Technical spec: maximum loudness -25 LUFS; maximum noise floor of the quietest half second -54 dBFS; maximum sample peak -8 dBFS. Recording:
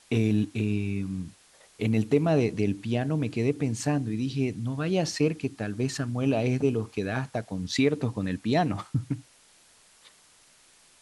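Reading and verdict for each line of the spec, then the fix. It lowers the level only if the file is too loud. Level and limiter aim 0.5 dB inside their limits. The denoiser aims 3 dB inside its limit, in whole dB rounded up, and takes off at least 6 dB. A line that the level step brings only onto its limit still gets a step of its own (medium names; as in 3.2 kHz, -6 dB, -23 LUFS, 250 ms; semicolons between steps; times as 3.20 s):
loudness -28.0 LUFS: pass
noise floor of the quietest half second -59 dBFS: pass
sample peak -10.0 dBFS: pass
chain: none needed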